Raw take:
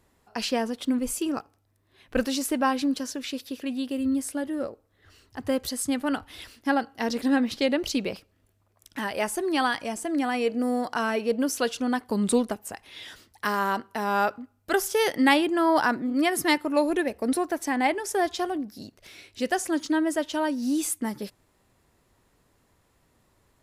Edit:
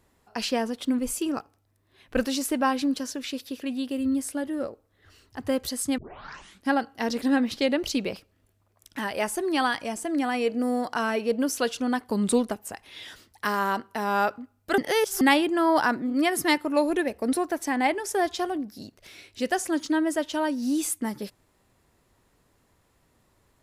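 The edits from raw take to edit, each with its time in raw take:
5.98 tape start 0.72 s
14.78–15.21 reverse

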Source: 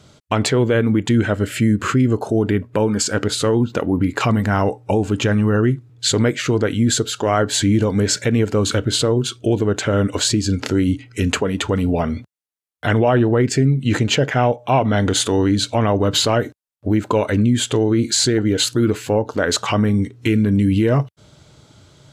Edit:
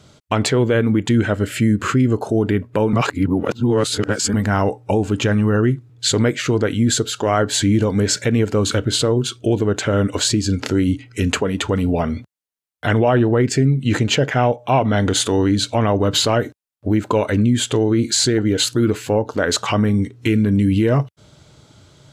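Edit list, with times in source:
2.93–4.34 reverse

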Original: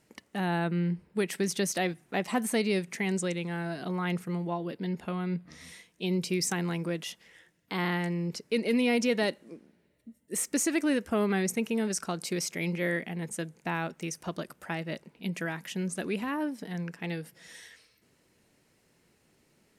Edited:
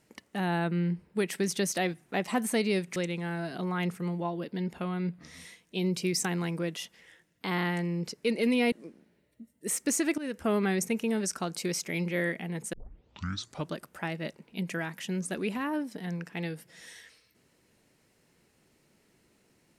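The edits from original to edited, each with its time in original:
2.96–3.23 cut
8.99–9.39 cut
10.85–11.14 fade in, from -16.5 dB
13.4 tape start 1.01 s

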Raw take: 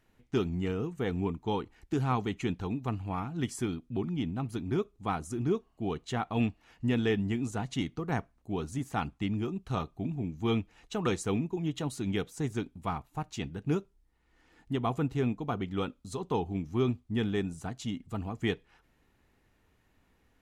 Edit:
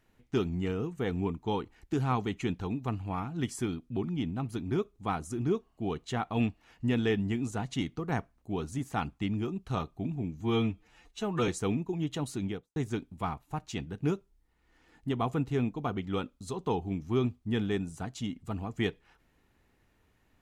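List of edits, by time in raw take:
10.4–11.12 stretch 1.5×
11.98–12.4 studio fade out

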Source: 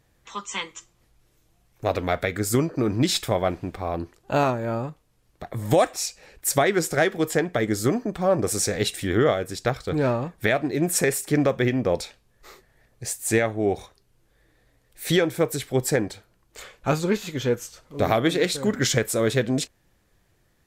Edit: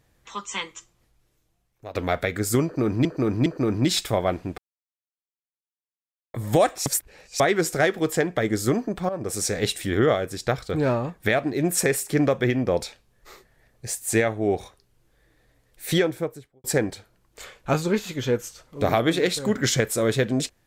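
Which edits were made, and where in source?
0.66–1.95 fade out, to -16.5 dB
2.64–3.05 loop, 3 plays
3.76–5.52 mute
6.04–6.58 reverse
8.27–8.88 fade in equal-power, from -14 dB
15.06–15.82 studio fade out

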